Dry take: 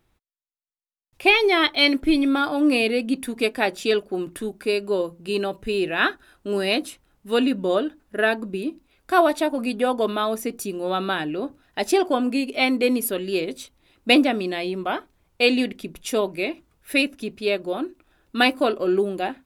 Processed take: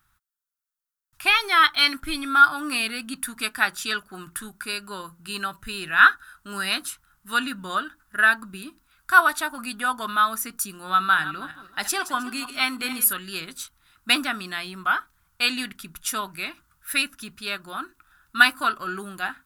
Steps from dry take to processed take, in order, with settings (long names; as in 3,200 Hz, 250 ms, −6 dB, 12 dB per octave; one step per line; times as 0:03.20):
0:10.73–0:13.13: feedback delay that plays each chunk backwards 157 ms, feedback 41%, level −13 dB
drawn EQ curve 150 Hz 0 dB, 500 Hz −19 dB, 1,400 Hz +15 dB, 2,200 Hz 0 dB, 13,000 Hz +12 dB
level −3 dB